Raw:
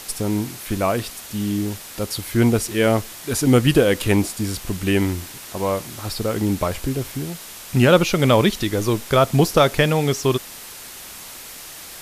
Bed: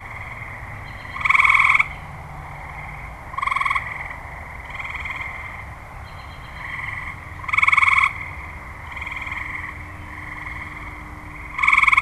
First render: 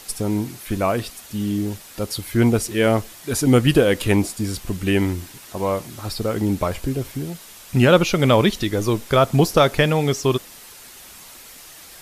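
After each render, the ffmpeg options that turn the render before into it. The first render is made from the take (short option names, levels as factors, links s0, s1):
-af "afftdn=nr=6:nf=-38"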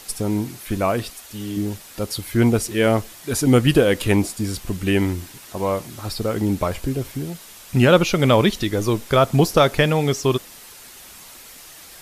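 -filter_complex "[0:a]asettb=1/sr,asplit=3[s0][s1][s2];[s0]atrim=end=1.134[s3];[s1]atrim=start=1.13:end=1.57,asetpts=PTS-STARTPTS,afade=t=in:d=0.004:c=qsin,afade=t=out:st=0.436:d=0.004:c=qsin,equalizer=f=160:w=1.5:g=-14[s4];[s2]atrim=start=1.566[s5];[s3][s4]acrossfade=d=0.004:c1=hsin:c2=qsin[s6];[s6][s5]acrossfade=d=0.004:c1=qsin:c2=hsin"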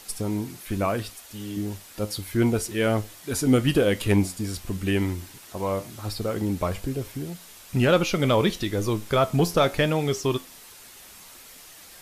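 -af "asoftclip=type=tanh:threshold=0.668,flanger=delay=9.4:depth=2.2:regen=76:speed=1:shape=sinusoidal"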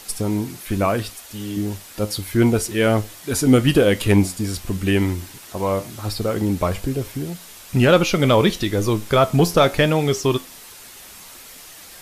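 -af "volume=1.88,alimiter=limit=0.708:level=0:latency=1"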